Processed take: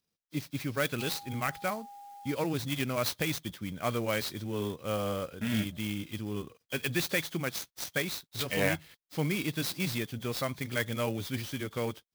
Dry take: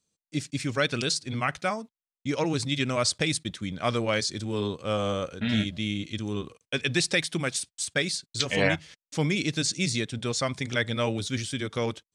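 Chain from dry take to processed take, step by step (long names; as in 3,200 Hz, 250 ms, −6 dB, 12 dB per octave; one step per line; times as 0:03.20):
hearing-aid frequency compression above 3,100 Hz 1.5 to 1
0:00.99–0:02.32: steady tone 810 Hz −41 dBFS
converter with an unsteady clock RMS 0.031 ms
level −4.5 dB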